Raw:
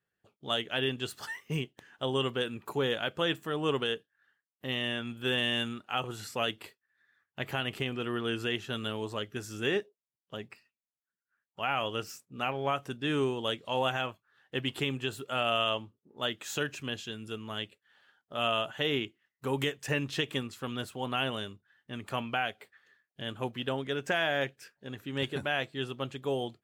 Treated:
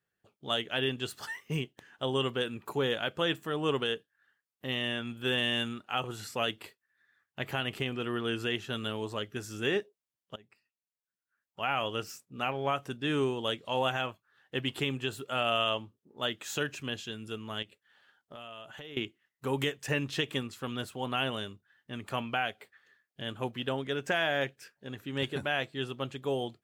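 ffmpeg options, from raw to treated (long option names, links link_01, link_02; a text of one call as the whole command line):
ffmpeg -i in.wav -filter_complex "[0:a]asettb=1/sr,asplit=3[link_01][link_02][link_03];[link_01]atrim=end=17.624[link_04];[link_02]atrim=start=17.62:end=18.97,asetpts=PTS-STARTPTS,afade=type=in:duration=0.004:curve=qsin,afade=type=out:start_time=1.346:duration=0.004:curve=qsin,acompressor=threshold=-43dB:ratio=6:attack=3.2:release=140:knee=1:detection=peak[link_05];[link_03]atrim=start=18.966[link_06];[link_04][link_05]acrossfade=duration=0.004:curve1=hsin:curve2=qsin[link_07];[link_07][link_06]acrossfade=duration=0.004:curve1=qsin:curve2=hsin,asplit=2[link_08][link_09];[link_08]atrim=end=10.36,asetpts=PTS-STARTPTS,afade=type=out:start_time=10.356:duration=0.004:curve=hsin:silence=0.105925[link_10];[link_09]atrim=start=10.36,asetpts=PTS-STARTPTS,afade=type=in:duration=1.26:silence=0.105925[link_11];[link_10][link_11]concat=n=2:v=0:a=1" out.wav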